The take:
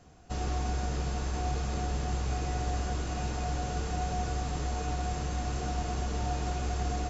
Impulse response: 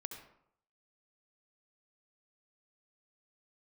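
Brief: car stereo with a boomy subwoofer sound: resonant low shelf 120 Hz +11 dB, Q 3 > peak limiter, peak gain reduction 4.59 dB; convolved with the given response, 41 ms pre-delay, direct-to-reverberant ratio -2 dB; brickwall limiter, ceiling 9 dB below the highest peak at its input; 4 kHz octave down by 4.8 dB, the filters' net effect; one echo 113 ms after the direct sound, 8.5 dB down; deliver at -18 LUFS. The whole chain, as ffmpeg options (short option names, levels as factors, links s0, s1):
-filter_complex "[0:a]equalizer=f=4000:t=o:g=-6.5,alimiter=level_in=1.78:limit=0.0631:level=0:latency=1,volume=0.562,aecho=1:1:113:0.376,asplit=2[s0][s1];[1:a]atrim=start_sample=2205,adelay=41[s2];[s1][s2]afir=irnorm=-1:irlink=0,volume=1.68[s3];[s0][s3]amix=inputs=2:normalize=0,lowshelf=f=120:t=q:w=3:g=11,volume=3.35,alimiter=limit=0.398:level=0:latency=1"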